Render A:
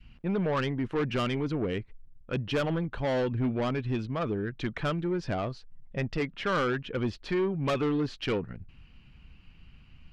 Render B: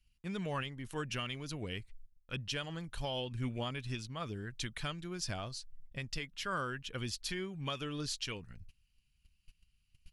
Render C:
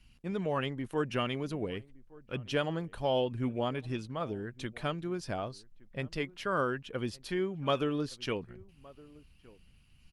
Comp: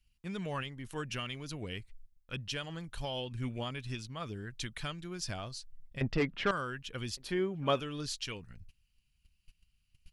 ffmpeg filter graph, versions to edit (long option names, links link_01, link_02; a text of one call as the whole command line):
ffmpeg -i take0.wav -i take1.wav -i take2.wav -filter_complex "[1:a]asplit=3[link_01][link_02][link_03];[link_01]atrim=end=6.012[link_04];[0:a]atrim=start=6.008:end=6.512[link_05];[link_02]atrim=start=6.508:end=7.172[link_06];[2:a]atrim=start=7.168:end=7.802[link_07];[link_03]atrim=start=7.798[link_08];[link_04][link_05]acrossfade=duration=0.004:curve1=hsin:curve2=hsin[link_09];[link_09][link_06]acrossfade=duration=0.004:curve1=hsin:curve2=hsin[link_10];[link_10][link_07]acrossfade=duration=0.004:curve1=hsin:curve2=hsin[link_11];[link_11][link_08]acrossfade=duration=0.004:curve1=hsin:curve2=hsin" out.wav